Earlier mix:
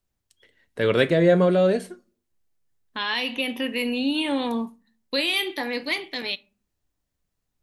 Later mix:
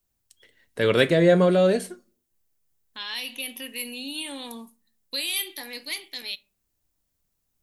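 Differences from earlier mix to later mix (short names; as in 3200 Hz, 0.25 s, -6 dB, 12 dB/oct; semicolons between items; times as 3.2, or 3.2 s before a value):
second voice: add pre-emphasis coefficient 0.8; master: add high shelf 5100 Hz +9 dB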